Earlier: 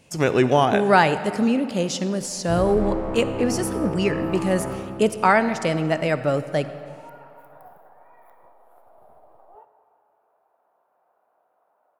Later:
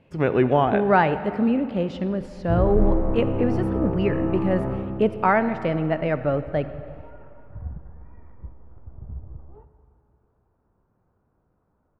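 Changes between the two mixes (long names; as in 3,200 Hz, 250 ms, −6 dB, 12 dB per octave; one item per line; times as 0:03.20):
first sound: remove high-pass with resonance 680 Hz, resonance Q 3.7
second sound: add spectral tilt −2 dB per octave
master: add high-frequency loss of the air 490 metres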